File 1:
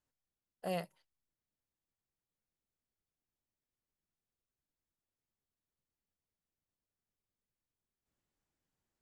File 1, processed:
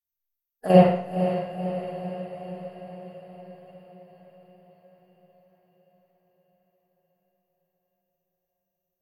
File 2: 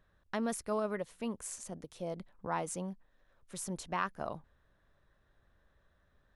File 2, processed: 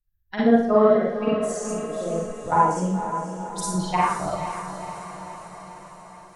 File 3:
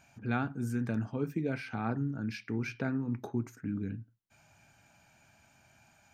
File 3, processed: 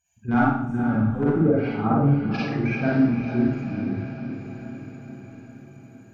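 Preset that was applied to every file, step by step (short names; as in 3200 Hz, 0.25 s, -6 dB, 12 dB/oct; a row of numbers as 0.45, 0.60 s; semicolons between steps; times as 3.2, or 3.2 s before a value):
per-bin expansion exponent 2; in parallel at -5 dB: wrapped overs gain 24 dB; on the sum: treble ducked by the level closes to 1300 Hz, closed at -29.5 dBFS; level quantiser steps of 11 dB; on a send: diffused feedback echo 0.51 s, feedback 62%, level -9 dB; on the sum: Schroeder reverb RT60 0.65 s, DRR -6.5 dB; match loudness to -23 LUFS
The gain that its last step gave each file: +15.5, +12.0, +9.0 dB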